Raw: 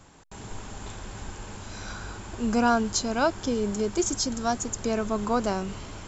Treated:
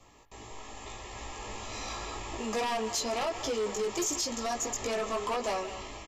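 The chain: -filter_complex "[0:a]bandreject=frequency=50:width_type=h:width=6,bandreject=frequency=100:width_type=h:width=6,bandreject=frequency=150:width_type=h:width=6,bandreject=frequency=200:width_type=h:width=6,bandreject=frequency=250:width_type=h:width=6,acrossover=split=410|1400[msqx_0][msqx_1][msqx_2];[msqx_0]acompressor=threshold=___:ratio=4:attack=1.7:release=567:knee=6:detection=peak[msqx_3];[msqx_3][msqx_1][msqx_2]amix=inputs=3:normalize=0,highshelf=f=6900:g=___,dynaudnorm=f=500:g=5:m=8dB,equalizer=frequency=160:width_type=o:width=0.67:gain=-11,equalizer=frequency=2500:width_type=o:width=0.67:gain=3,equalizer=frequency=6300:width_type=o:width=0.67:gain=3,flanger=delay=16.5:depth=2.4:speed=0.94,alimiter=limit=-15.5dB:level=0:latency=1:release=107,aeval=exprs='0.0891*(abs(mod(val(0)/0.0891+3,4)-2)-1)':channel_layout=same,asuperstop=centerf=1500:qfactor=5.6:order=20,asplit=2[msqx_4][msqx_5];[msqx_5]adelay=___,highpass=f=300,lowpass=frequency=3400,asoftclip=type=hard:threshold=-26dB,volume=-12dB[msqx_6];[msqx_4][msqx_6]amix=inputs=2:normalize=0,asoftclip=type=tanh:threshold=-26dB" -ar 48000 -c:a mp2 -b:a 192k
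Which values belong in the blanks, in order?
-40dB, -9.5, 180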